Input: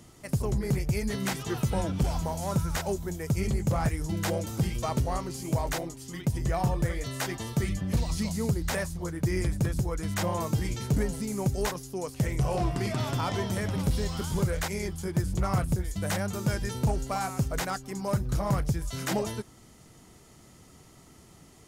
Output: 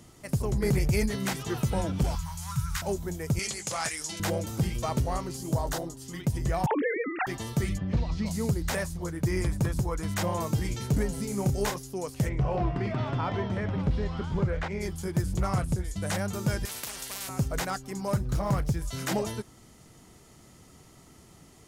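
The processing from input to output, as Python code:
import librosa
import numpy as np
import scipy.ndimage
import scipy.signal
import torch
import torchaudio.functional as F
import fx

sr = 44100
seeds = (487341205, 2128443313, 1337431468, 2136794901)

y = fx.env_flatten(x, sr, amount_pct=70, at=(0.62, 1.06))
y = fx.cheby1_bandstop(y, sr, low_hz=140.0, high_hz=1100.0, order=3, at=(2.15, 2.82))
y = fx.weighting(y, sr, curve='ITU-R 468', at=(3.39, 4.2))
y = fx.peak_eq(y, sr, hz=2300.0, db=-13.0, octaves=0.42, at=(5.37, 6.02))
y = fx.sine_speech(y, sr, at=(6.66, 7.27))
y = fx.air_absorb(y, sr, metres=200.0, at=(7.77, 8.25), fade=0.02)
y = fx.peak_eq(y, sr, hz=1000.0, db=5.5, octaves=0.65, at=(9.27, 10.12))
y = fx.doubler(y, sr, ms=30.0, db=-7.0, at=(11.13, 11.78))
y = fx.lowpass(y, sr, hz=2500.0, slope=12, at=(12.28, 14.8), fade=0.02)
y = fx.cheby1_lowpass(y, sr, hz=10000.0, order=2, at=(15.5, 16.14))
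y = fx.spectral_comp(y, sr, ratio=10.0, at=(16.65, 17.29))
y = fx.resample_linear(y, sr, factor=2, at=(18.16, 18.77))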